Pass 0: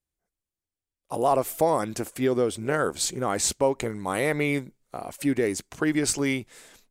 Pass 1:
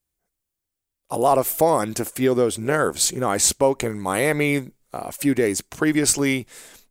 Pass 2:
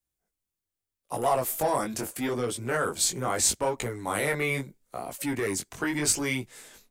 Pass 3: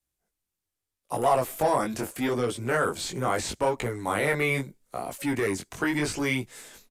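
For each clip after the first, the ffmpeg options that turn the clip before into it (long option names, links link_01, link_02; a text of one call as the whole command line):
ffmpeg -i in.wav -af "highshelf=frequency=10000:gain=8.5,volume=4.5dB" out.wav
ffmpeg -i in.wav -filter_complex "[0:a]flanger=delay=16:depth=6.8:speed=0.78,acrossover=split=160|680|3400[link_01][link_02][link_03][link_04];[link_02]asoftclip=type=tanh:threshold=-27.5dB[link_05];[link_01][link_05][link_03][link_04]amix=inputs=4:normalize=0,volume=-2dB" out.wav
ffmpeg -i in.wav -filter_complex "[0:a]acrossover=split=3600[link_01][link_02];[link_02]acompressor=threshold=-39dB:ratio=4:attack=1:release=60[link_03];[link_01][link_03]amix=inputs=2:normalize=0,aresample=32000,aresample=44100,volume=2.5dB" out.wav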